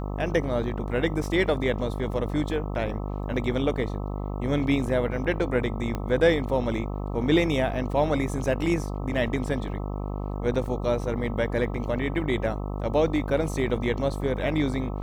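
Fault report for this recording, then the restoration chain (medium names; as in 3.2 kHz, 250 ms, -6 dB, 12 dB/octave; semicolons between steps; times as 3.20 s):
buzz 50 Hz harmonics 26 -31 dBFS
5.95 s: pop -17 dBFS
10.66 s: dropout 2.1 ms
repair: de-click; de-hum 50 Hz, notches 26; interpolate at 10.66 s, 2.1 ms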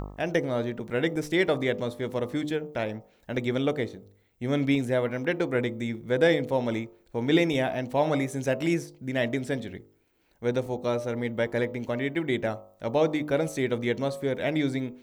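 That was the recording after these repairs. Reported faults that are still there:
nothing left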